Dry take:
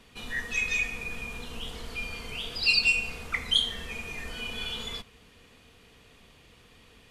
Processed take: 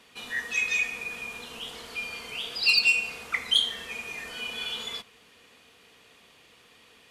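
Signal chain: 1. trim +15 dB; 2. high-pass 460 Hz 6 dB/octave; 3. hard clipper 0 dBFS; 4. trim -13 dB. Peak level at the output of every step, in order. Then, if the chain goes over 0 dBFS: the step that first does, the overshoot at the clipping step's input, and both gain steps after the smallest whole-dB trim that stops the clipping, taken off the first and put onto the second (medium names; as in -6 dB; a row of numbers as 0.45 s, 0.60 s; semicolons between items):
+4.5 dBFS, +4.5 dBFS, 0.0 dBFS, -13.0 dBFS; step 1, 4.5 dB; step 1 +10 dB, step 4 -8 dB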